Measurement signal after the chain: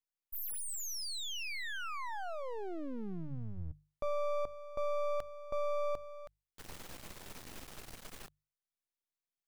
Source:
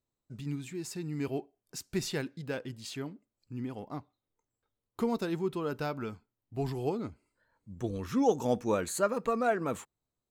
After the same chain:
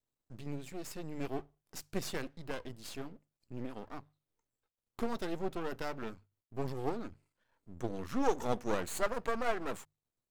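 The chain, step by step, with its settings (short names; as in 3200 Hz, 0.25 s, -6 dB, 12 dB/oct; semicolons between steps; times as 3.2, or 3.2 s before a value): half-wave rectifier; notches 50/100/150 Hz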